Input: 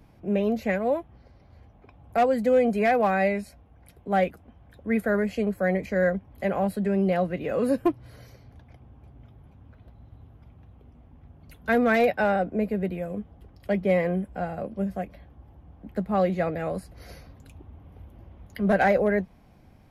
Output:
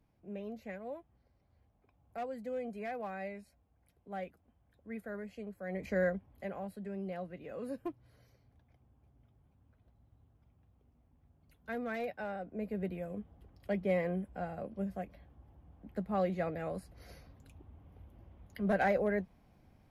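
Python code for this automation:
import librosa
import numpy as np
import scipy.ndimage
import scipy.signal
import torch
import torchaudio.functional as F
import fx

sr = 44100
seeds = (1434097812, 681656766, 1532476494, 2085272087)

y = fx.gain(x, sr, db=fx.line((5.65, -18.5), (5.89, -6.0), (6.64, -17.0), (12.41, -17.0), (12.81, -9.0)))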